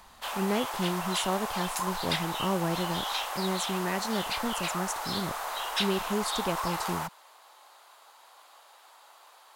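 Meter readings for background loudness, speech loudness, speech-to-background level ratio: −32.5 LKFS, −33.5 LKFS, −1.0 dB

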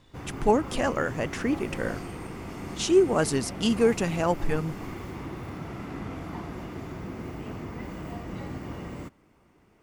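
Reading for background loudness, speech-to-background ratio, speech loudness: −37.5 LKFS, 11.5 dB, −26.0 LKFS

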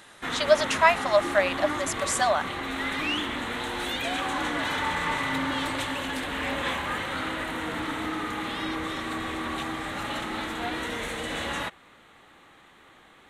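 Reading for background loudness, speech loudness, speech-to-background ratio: −30.0 LKFS, −24.0 LKFS, 6.0 dB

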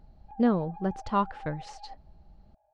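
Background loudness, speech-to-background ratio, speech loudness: −47.0 LKFS, 17.5 dB, −29.5 LKFS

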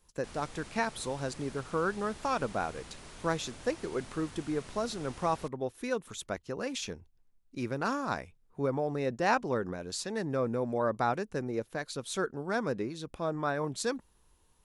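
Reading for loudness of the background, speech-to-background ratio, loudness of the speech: −49.0 LKFS, 15.0 dB, −34.0 LKFS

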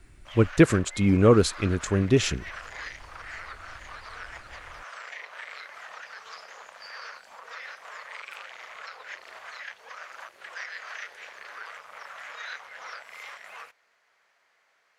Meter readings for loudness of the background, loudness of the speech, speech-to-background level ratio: −41.0 LKFS, −22.5 LKFS, 18.5 dB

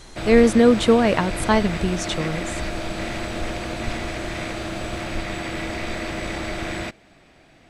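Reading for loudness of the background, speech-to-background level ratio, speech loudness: −29.0 LKFS, 10.0 dB, −19.0 LKFS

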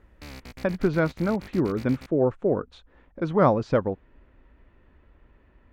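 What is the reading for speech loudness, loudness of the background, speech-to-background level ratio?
−25.0 LKFS, −44.5 LKFS, 19.5 dB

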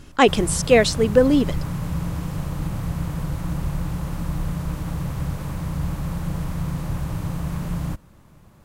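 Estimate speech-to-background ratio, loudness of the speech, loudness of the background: 10.5 dB, −18.0 LKFS, −28.5 LKFS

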